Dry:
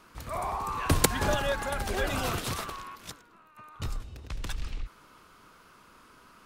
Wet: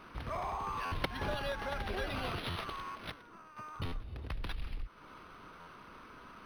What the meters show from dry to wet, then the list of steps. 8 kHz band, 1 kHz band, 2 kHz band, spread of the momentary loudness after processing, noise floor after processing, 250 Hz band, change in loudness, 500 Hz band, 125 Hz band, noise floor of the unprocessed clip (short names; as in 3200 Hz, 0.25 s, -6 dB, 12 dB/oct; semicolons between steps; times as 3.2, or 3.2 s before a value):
-22.5 dB, -6.0 dB, -6.5 dB, 16 LU, -55 dBFS, -8.5 dB, -8.5 dB, -8.0 dB, -8.0 dB, -57 dBFS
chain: dynamic EQ 3400 Hz, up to +6 dB, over -50 dBFS, Q 1.1; compressor 2.5:1, threshold -43 dBFS, peak gain reduction 18 dB; stuck buffer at 0.85/2.49/3.85/5.6, samples 512, times 5; decimation joined by straight lines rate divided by 6×; gain +4 dB